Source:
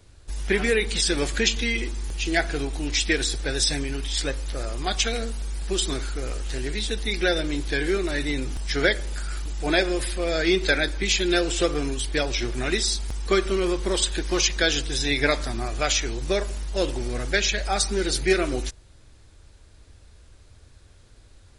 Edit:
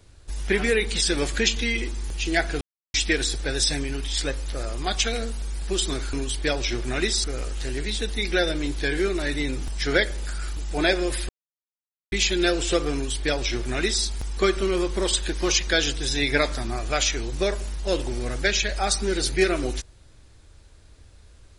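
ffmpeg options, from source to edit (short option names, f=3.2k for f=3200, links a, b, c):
-filter_complex "[0:a]asplit=7[a][b][c][d][e][f][g];[a]atrim=end=2.61,asetpts=PTS-STARTPTS,afade=t=out:st=2.606:d=0.004:c=hsin[h];[b]atrim=start=2.61:end=2.94,asetpts=PTS-STARTPTS,volume=0[i];[c]atrim=start=2.94:end=6.132,asetpts=PTS-STARTPTS,afade=t=in:d=0.004:c=hsin[j];[d]atrim=start=11.828:end=12.942[k];[e]atrim=start=6.128:end=10.18,asetpts=PTS-STARTPTS,afade=t=out:st=4.048:d=0.004:c=hsin[l];[f]atrim=start=10.18:end=11.01,asetpts=PTS-STARTPTS,volume=0[m];[g]atrim=start=11.01,asetpts=PTS-STARTPTS,afade=t=in:d=0.004:c=hsin[n];[h][i][j]concat=n=3:v=0:a=1[o];[o][k]acrossfade=d=0.004:c1=hsin:c2=hsin[p];[l][m][n]concat=n=3:v=0:a=1[q];[p][q]acrossfade=d=0.004:c1=hsin:c2=hsin"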